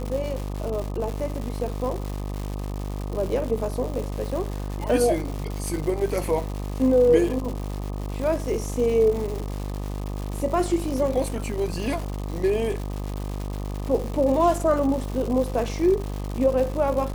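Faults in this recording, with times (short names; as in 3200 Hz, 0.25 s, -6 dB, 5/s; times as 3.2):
buzz 50 Hz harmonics 25 -30 dBFS
crackle 290/s -30 dBFS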